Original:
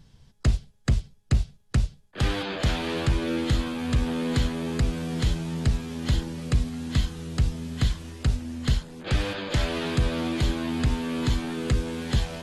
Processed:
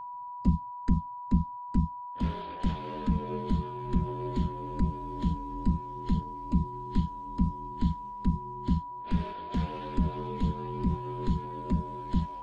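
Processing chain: ring modulator 120 Hz; whine 980 Hz -33 dBFS; spectral expander 1.5:1

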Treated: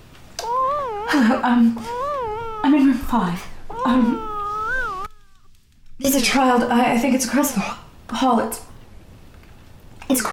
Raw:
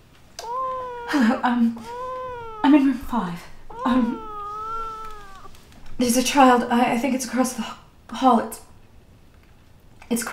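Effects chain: 5.06–6.05 passive tone stack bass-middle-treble 6-0-2; maximiser +14 dB; record warp 45 rpm, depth 250 cents; gain -7.5 dB

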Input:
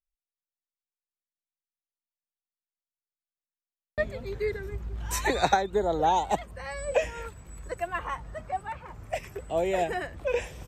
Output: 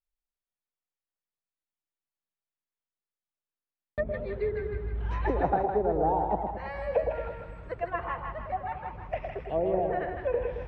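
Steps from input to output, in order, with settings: treble ducked by the level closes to 800 Hz, closed at -23 dBFS; air absorption 310 m; on a send: split-band echo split 810 Hz, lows 0.11 s, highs 0.159 s, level -4.5 dB

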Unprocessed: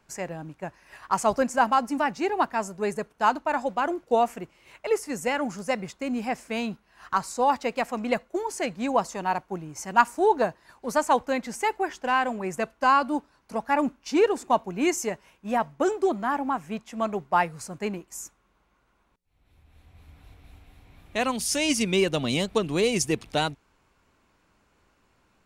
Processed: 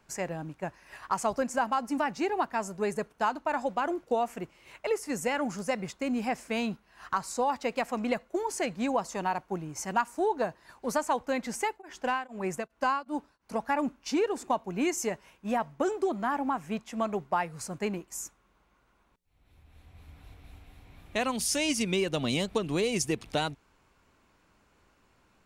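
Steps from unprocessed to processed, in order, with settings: compressor 3:1, threshold -26 dBFS, peak gain reduction 10.5 dB; 11.5–13.58 beating tremolo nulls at 1.9 Hz -> 3.3 Hz

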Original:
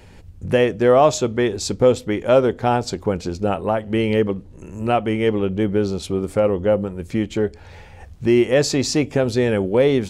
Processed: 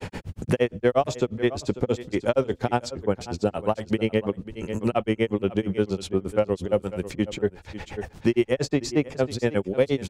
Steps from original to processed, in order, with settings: grains 0.1 s, grains 8.5/s, spray 12 ms, pitch spread up and down by 0 st; echo 0.543 s -18 dB; three-band squash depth 70%; gain -1 dB

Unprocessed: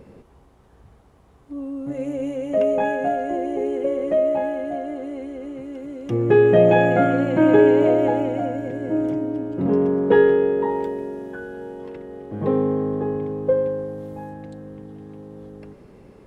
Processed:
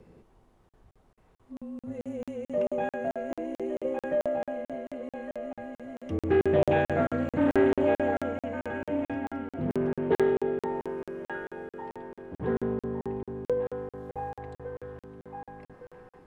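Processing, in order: 14.09–15.03 ten-band EQ 125 Hz +10 dB, 250 Hz -11 dB, 500 Hz +6 dB, 1000 Hz +11 dB, 2000 Hz +8 dB; band-limited delay 1.162 s, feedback 44%, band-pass 1500 Hz, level -3.5 dB; frequency shift -28 Hz; crackling interface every 0.22 s, samples 2048, zero, from 0.69; Doppler distortion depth 0.17 ms; gain -8.5 dB

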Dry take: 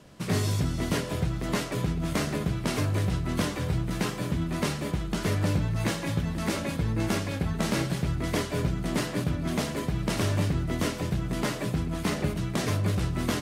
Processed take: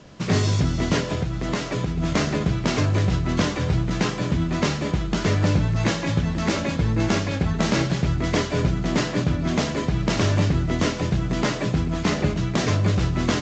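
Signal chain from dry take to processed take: 1.12–1.98 compressor, threshold -27 dBFS, peak gain reduction 6 dB; gain +6 dB; µ-law 128 kbps 16000 Hz

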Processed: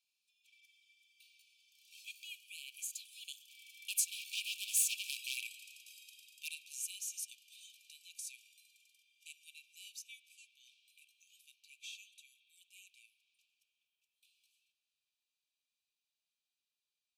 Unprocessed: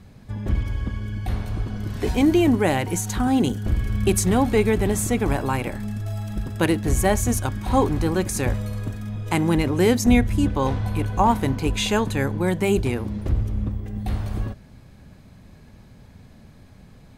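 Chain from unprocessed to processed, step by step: Doppler pass-by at 5.02, 16 m/s, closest 8.8 m; wavefolder -19.5 dBFS; brick-wall FIR high-pass 2300 Hz; spring tank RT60 2.9 s, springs 52 ms, chirp 20 ms, DRR 13 dB; gain -1 dB

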